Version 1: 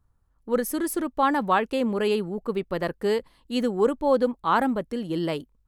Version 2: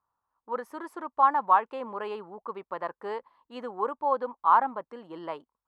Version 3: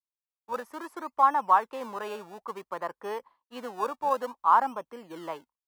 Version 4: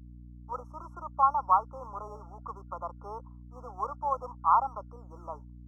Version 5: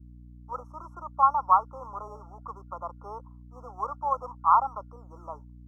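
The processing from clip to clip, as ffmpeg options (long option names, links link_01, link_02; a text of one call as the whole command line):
ffmpeg -i in.wav -af "bandpass=frequency=1000:width_type=q:width=3.5:csg=0,volume=5dB" out.wav
ffmpeg -i in.wav -filter_complex "[0:a]agate=range=-33dB:threshold=-48dB:ratio=3:detection=peak,acrossover=split=380|670[link_01][link_02][link_03];[link_01]acrusher=samples=29:mix=1:aa=0.000001:lfo=1:lforange=29:lforate=0.57[link_04];[link_04][link_02][link_03]amix=inputs=3:normalize=0" out.wav
ffmpeg -i in.wav -filter_complex "[0:a]afftfilt=real='re*(1-between(b*sr/4096,1400,5300))':imag='im*(1-between(b*sr/4096,1400,5300))':win_size=4096:overlap=0.75,acrossover=split=560 4900:gain=0.112 1 0.0708[link_01][link_02][link_03];[link_01][link_02][link_03]amix=inputs=3:normalize=0,aeval=exprs='val(0)+0.00562*(sin(2*PI*60*n/s)+sin(2*PI*2*60*n/s)/2+sin(2*PI*3*60*n/s)/3+sin(2*PI*4*60*n/s)/4+sin(2*PI*5*60*n/s)/5)':channel_layout=same,volume=-1.5dB" out.wav
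ffmpeg -i in.wav -af "adynamicequalizer=threshold=0.0141:dfrequency=1300:dqfactor=1.1:tfrequency=1300:tqfactor=1.1:attack=5:release=100:ratio=0.375:range=2:mode=boostabove:tftype=bell" out.wav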